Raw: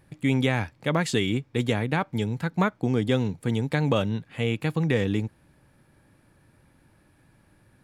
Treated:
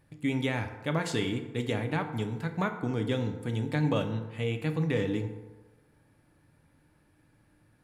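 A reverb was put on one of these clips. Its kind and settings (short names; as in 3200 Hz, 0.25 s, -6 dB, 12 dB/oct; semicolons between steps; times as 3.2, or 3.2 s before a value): FDN reverb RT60 1.2 s, low-frequency decay 0.85×, high-frequency decay 0.5×, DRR 5.5 dB; gain -6.5 dB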